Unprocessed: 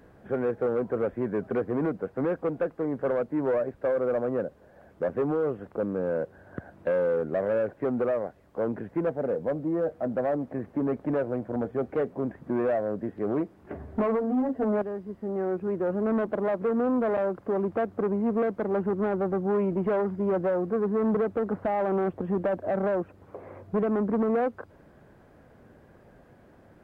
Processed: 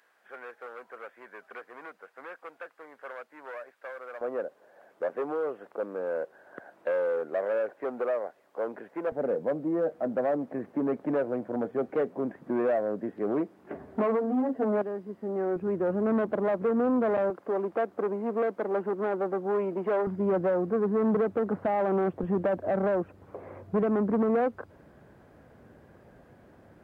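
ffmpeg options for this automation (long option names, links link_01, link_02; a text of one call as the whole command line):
ffmpeg -i in.wav -af "asetnsamples=nb_out_samples=441:pad=0,asendcmd='4.21 highpass f 490;9.12 highpass f 200;15.56 highpass f 78;17.3 highpass f 330;20.07 highpass f 98;22.23 highpass f 42',highpass=1400" out.wav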